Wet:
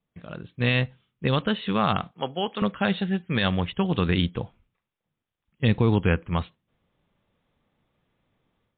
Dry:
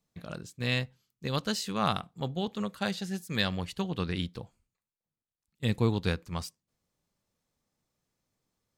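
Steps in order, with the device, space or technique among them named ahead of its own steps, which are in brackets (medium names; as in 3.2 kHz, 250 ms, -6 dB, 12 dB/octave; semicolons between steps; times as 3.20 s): 2.11–2.62 s: frequency weighting A; low-bitrate web radio (level rider gain up to 11.5 dB; peak limiter -9.5 dBFS, peak gain reduction 7 dB; MP3 40 kbps 8 kHz)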